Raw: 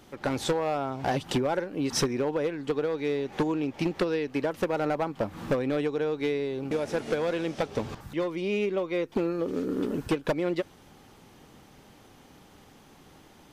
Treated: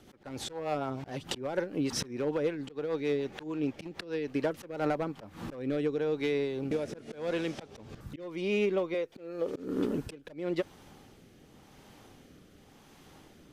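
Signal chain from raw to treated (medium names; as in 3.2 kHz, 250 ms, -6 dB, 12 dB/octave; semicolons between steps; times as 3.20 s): 8.94–9.55 s: resonant low shelf 380 Hz -7.5 dB, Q 1.5; slow attack 246 ms; rotary cabinet horn 6.7 Hz, later 0.9 Hz, at 4.33 s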